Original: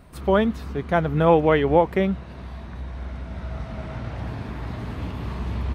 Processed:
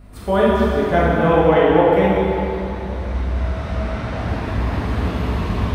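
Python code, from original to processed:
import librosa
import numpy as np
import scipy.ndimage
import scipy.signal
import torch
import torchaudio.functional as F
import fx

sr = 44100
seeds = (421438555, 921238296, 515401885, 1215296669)

y = fx.peak_eq(x, sr, hz=130.0, db=-8.5, octaves=0.33)
y = fx.rider(y, sr, range_db=3, speed_s=0.5)
y = fx.add_hum(y, sr, base_hz=50, snr_db=18)
y = fx.rev_plate(y, sr, seeds[0], rt60_s=2.9, hf_ratio=0.85, predelay_ms=0, drr_db=-8.0)
y = F.gain(torch.from_numpy(y), -1.0).numpy()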